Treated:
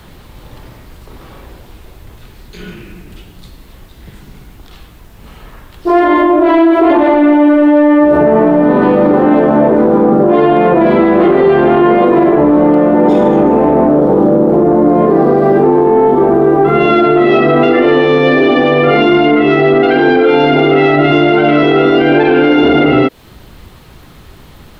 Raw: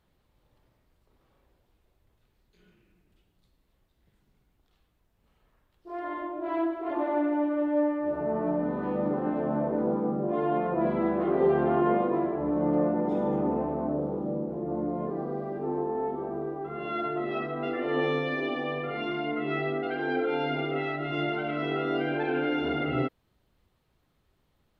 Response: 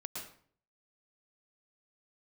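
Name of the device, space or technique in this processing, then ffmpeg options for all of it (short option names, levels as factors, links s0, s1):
mastering chain: -filter_complex "[0:a]equalizer=f=580:t=o:w=0.77:g=-3,acrossover=split=270|790|1900[s0][s1][s2][s3];[s0]acompressor=threshold=0.00447:ratio=4[s4];[s1]acompressor=threshold=0.0224:ratio=4[s5];[s2]acompressor=threshold=0.00282:ratio=4[s6];[s3]acompressor=threshold=0.00398:ratio=4[s7];[s4][s5][s6][s7]amix=inputs=4:normalize=0,acompressor=threshold=0.0158:ratio=2,asoftclip=type=tanh:threshold=0.0355,alimiter=level_in=56.2:limit=0.891:release=50:level=0:latency=1,volume=0.891"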